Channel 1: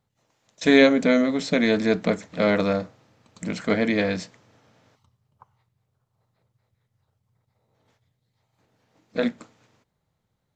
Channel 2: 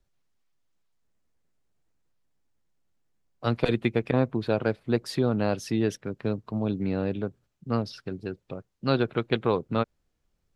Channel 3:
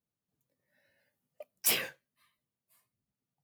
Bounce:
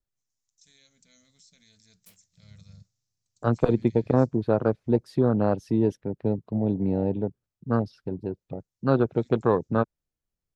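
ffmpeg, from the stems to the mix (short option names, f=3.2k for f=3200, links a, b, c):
-filter_complex "[0:a]firequalizer=gain_entry='entry(110,0);entry(280,-25);entry(5500,13)':delay=0.05:min_phase=1,alimiter=limit=-23dB:level=0:latency=1:release=203,volume=-7.5dB,asplit=2[a][b];[1:a]volume=3dB[c];[2:a]acrusher=bits=3:mix=0:aa=0.5,aeval=exprs='val(0)*pow(10,-20*(0.5-0.5*cos(2*PI*1.3*n/s))/20)':c=same,adelay=400,volume=0dB[d];[b]apad=whole_len=169226[e];[d][e]sidechaincompress=threshold=-49dB:ratio=3:attack=16:release=509[f];[a][c][f]amix=inputs=3:normalize=0,afwtdn=0.0398"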